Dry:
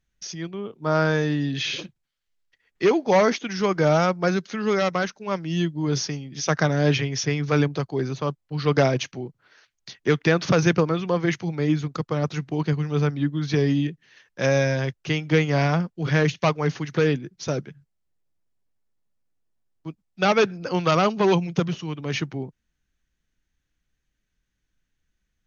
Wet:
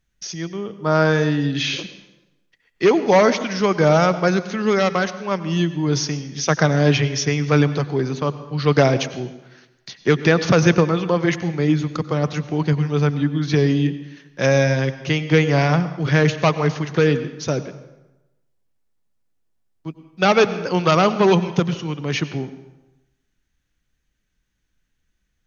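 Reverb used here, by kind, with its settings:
dense smooth reverb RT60 1 s, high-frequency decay 0.75×, pre-delay 80 ms, DRR 13 dB
level +4 dB

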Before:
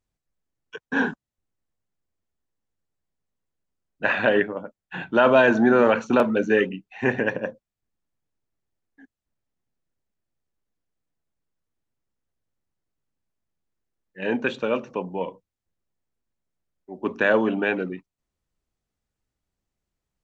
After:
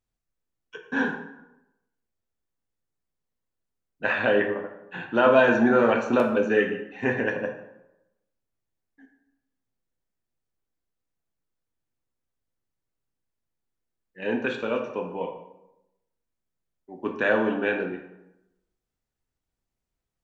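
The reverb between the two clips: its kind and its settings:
dense smooth reverb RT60 0.88 s, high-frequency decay 0.65×, DRR 2.5 dB
level −4 dB

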